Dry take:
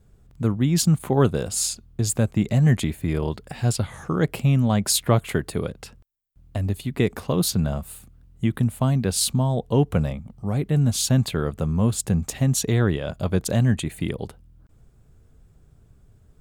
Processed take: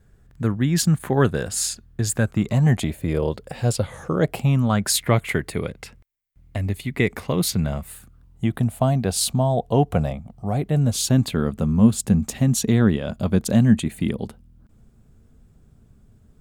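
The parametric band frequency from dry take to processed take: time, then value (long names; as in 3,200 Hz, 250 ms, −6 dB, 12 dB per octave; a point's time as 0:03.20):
parametric band +10.5 dB 0.41 octaves
0:02.18 1,700 Hz
0:03.03 520 Hz
0:04.13 520 Hz
0:05.02 2,100 Hz
0:07.85 2,100 Hz
0:08.49 700 Hz
0:10.70 700 Hz
0:11.37 220 Hz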